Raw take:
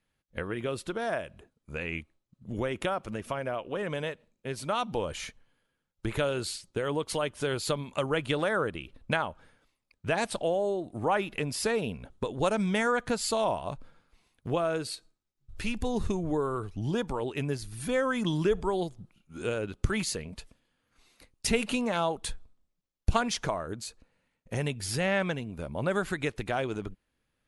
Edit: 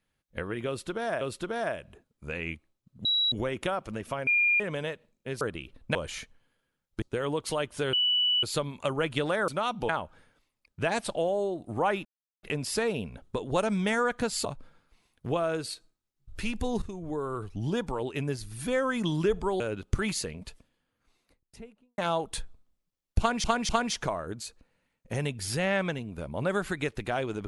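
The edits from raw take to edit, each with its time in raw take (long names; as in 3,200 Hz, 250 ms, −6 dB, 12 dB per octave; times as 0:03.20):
0:00.67–0:01.21: repeat, 2 plays
0:02.51: insert tone 3,890 Hz −22.5 dBFS 0.27 s
0:03.46–0:03.79: beep over 2,410 Hz −20.5 dBFS
0:04.60–0:05.01: swap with 0:08.61–0:09.15
0:06.08–0:06.65: remove
0:07.56: insert tone 2,960 Hz −22 dBFS 0.50 s
0:11.31: splice in silence 0.38 s
0:13.33–0:13.66: remove
0:16.03–0:16.71: fade in, from −12.5 dB
0:18.81–0:19.51: remove
0:20.33–0:21.89: fade out and dull
0:23.10–0:23.35: repeat, 3 plays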